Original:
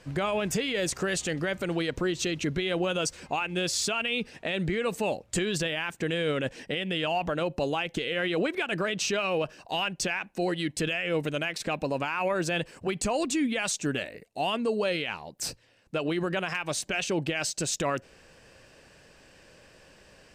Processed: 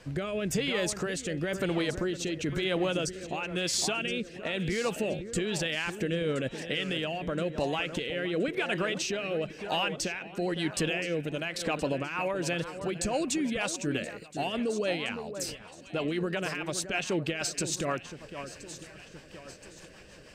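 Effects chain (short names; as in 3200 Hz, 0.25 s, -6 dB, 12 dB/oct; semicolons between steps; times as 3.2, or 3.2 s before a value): compressor 1.5:1, threshold -38 dBFS, peak gain reduction 5.5 dB; echo with dull and thin repeats by turns 0.511 s, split 1700 Hz, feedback 67%, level -10 dB; rotary speaker horn 1 Hz, later 6.3 Hz, at 11.79; gain +4.5 dB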